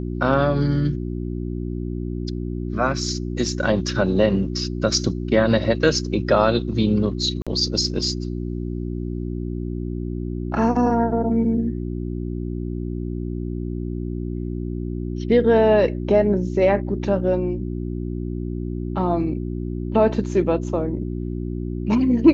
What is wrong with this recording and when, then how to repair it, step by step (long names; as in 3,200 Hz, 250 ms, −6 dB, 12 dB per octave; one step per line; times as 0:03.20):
mains hum 60 Hz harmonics 6 −27 dBFS
0:07.42–0:07.47: drop-out 46 ms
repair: hum removal 60 Hz, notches 6
repair the gap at 0:07.42, 46 ms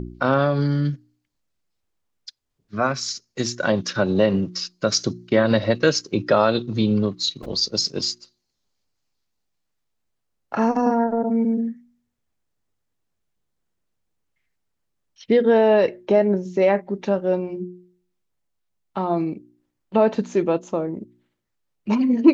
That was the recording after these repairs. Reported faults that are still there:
none of them is left